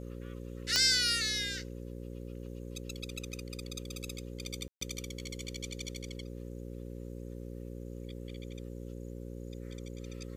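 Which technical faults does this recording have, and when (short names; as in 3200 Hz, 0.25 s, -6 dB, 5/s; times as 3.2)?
buzz 60 Hz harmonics 9 -43 dBFS
0.76 pop -11 dBFS
4.68–4.81 gap 0.134 s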